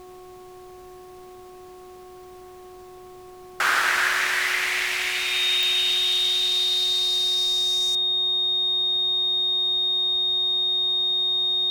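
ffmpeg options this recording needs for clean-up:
-af "adeclick=t=4,bandreject=f=365.9:t=h:w=4,bandreject=f=731.8:t=h:w=4,bandreject=f=1.0977k:t=h:w=4,bandreject=f=3.7k:w=30,agate=range=-21dB:threshold=-36dB"

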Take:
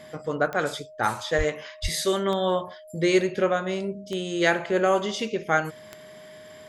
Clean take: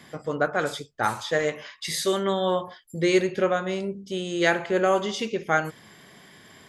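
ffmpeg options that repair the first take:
-filter_complex "[0:a]adeclick=t=4,bandreject=f=620:w=30,asplit=3[a][b][c];[a]afade=t=out:st=1.37:d=0.02[d];[b]highpass=f=140:w=0.5412,highpass=f=140:w=1.3066,afade=t=in:st=1.37:d=0.02,afade=t=out:st=1.49:d=0.02[e];[c]afade=t=in:st=1.49:d=0.02[f];[d][e][f]amix=inputs=3:normalize=0,asplit=3[g][h][i];[g]afade=t=out:st=1.82:d=0.02[j];[h]highpass=f=140:w=0.5412,highpass=f=140:w=1.3066,afade=t=in:st=1.82:d=0.02,afade=t=out:st=1.94:d=0.02[k];[i]afade=t=in:st=1.94:d=0.02[l];[j][k][l]amix=inputs=3:normalize=0"

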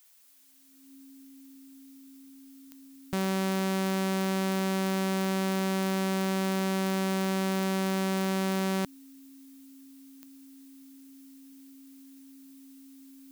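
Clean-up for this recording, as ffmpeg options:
-af "adeclick=t=4,bandreject=f=270:w=30,agate=range=-21dB:threshold=-43dB"

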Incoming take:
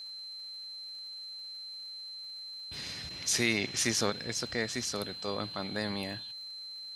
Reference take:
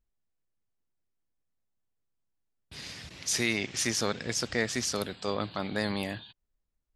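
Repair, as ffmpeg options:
-af "adeclick=t=4,bandreject=f=4.1k:w=30,agate=range=-21dB:threshold=-36dB,asetnsamples=n=441:p=0,asendcmd='4.1 volume volume 4dB',volume=0dB"

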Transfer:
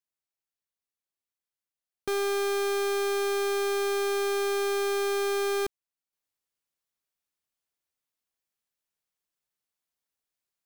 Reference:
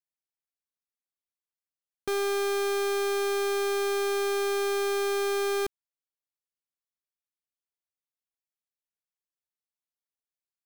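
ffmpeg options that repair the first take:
-af "asetnsamples=n=441:p=0,asendcmd='6.13 volume volume -6dB',volume=0dB"

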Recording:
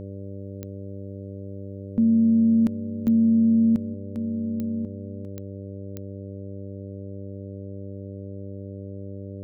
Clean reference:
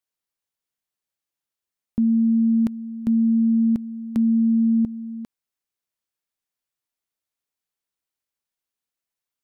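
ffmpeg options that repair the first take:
-af "adeclick=t=4,bandreject=f=98.4:t=h:w=4,bandreject=f=196.8:t=h:w=4,bandreject=f=295.2:t=h:w=4,bandreject=f=393.6:t=h:w=4,bandreject=f=492:t=h:w=4,bandreject=f=590.4:t=h:w=4,asetnsamples=n=441:p=0,asendcmd='3.94 volume volume 10dB',volume=0dB"

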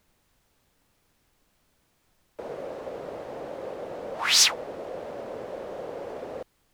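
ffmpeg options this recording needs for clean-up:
-af "agate=range=-21dB:threshold=-61dB"

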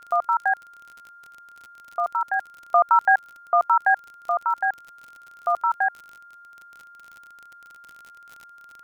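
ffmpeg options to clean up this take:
-af "adeclick=t=4,bandreject=f=1.4k:w=30,afftdn=nr=20:nf=-48"

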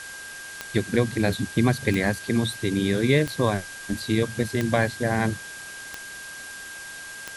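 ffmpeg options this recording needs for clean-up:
-af "adeclick=t=4,bandreject=f=1.6k:w=30,afwtdn=0.01"

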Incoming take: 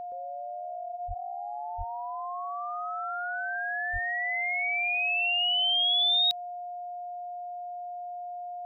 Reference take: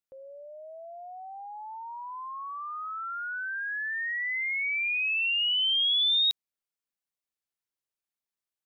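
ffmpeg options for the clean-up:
-filter_complex "[0:a]bandreject=f=710:w=30,asplit=3[a][b][c];[a]afade=t=out:st=1.07:d=0.02[d];[b]highpass=f=140:w=0.5412,highpass=f=140:w=1.3066,afade=t=in:st=1.07:d=0.02,afade=t=out:st=1.19:d=0.02[e];[c]afade=t=in:st=1.19:d=0.02[f];[d][e][f]amix=inputs=3:normalize=0,asplit=3[g][h][i];[g]afade=t=out:st=1.77:d=0.02[j];[h]highpass=f=140:w=0.5412,highpass=f=140:w=1.3066,afade=t=in:st=1.77:d=0.02,afade=t=out:st=1.89:d=0.02[k];[i]afade=t=in:st=1.89:d=0.02[l];[j][k][l]amix=inputs=3:normalize=0,asplit=3[m][n][o];[m]afade=t=out:st=3.92:d=0.02[p];[n]highpass=f=140:w=0.5412,highpass=f=140:w=1.3066,afade=t=in:st=3.92:d=0.02,afade=t=out:st=4.04:d=0.02[q];[o]afade=t=in:st=4.04:d=0.02[r];[p][q][r]amix=inputs=3:normalize=0"

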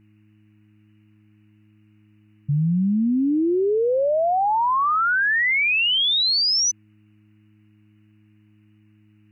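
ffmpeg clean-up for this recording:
-af "bandreject=f=105.8:t=h:w=4,bandreject=f=211.6:t=h:w=4,bandreject=f=317.4:t=h:w=4,afftdn=nr=14:nf=-56"

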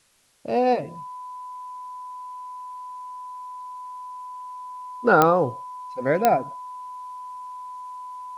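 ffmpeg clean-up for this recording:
-af "adeclick=t=4,bandreject=f=1k:w=30,agate=range=-21dB:threshold=-29dB"

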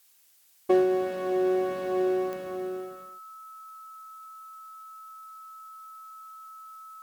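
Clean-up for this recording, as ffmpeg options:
-af "adeclick=t=4,bandreject=f=1.3k:w=30,agate=range=-21dB:threshold=-38dB"

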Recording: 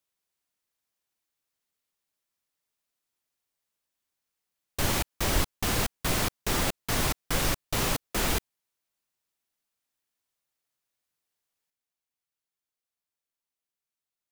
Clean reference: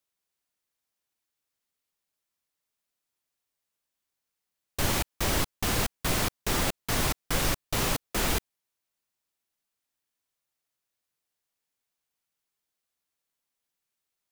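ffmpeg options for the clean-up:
-filter_complex "[0:a]asplit=3[a][b][c];[a]afade=t=out:st=5.34:d=0.02[d];[b]highpass=f=140:w=0.5412,highpass=f=140:w=1.3066,afade=t=in:st=5.34:d=0.02,afade=t=out:st=5.46:d=0.02[e];[c]afade=t=in:st=5.46:d=0.02[f];[d][e][f]amix=inputs=3:normalize=0,asetnsamples=n=441:p=0,asendcmd='11.7 volume volume 7dB',volume=0dB"

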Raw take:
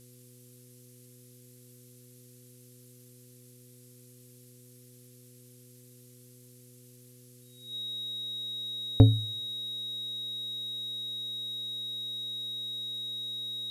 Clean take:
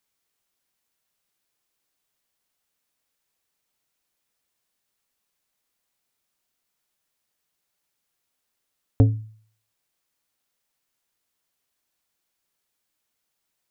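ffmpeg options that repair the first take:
-af "bandreject=f=123.5:t=h:w=4,bandreject=f=247:t=h:w=4,bandreject=f=370.5:t=h:w=4,bandreject=f=494:t=h:w=4,bandreject=f=3.8k:w=30,afftdn=nr=24:nf=-55"

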